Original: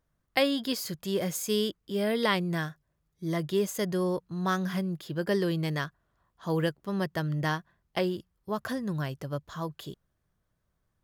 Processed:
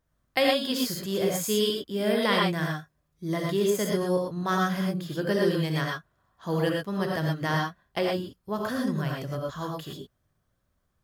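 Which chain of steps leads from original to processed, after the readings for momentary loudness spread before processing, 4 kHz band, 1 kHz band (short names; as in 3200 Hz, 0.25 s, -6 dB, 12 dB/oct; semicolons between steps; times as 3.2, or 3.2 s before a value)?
10 LU, +4.5 dB, +4.0 dB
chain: non-linear reverb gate 0.14 s rising, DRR -1 dB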